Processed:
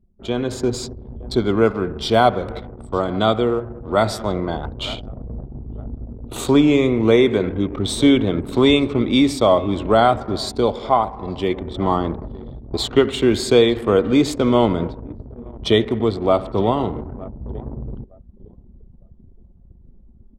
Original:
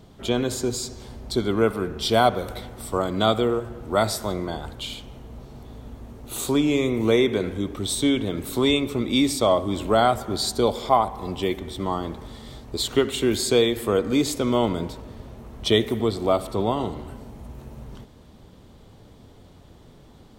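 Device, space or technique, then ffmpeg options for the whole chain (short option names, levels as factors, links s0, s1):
voice memo with heavy noise removal: -af "aemphasis=mode=reproduction:type=50kf,aecho=1:1:910|1820|2730:0.0794|0.0342|0.0147,anlmdn=1.58,dynaudnorm=f=220:g=5:m=3.76,volume=0.891"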